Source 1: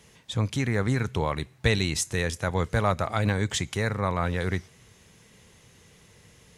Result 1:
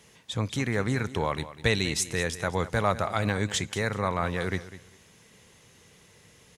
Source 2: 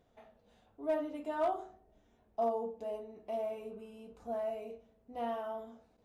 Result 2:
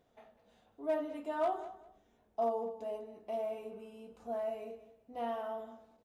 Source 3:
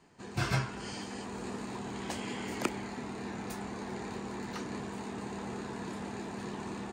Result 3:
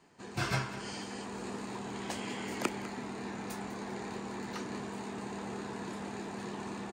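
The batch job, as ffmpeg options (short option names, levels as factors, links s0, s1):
-filter_complex "[0:a]lowshelf=f=120:g=-7.5,asplit=2[s0][s1];[s1]aecho=0:1:200|400:0.178|0.0373[s2];[s0][s2]amix=inputs=2:normalize=0"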